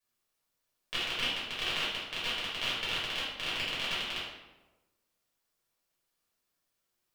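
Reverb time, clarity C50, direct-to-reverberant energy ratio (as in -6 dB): 1.2 s, 0.0 dB, -9.5 dB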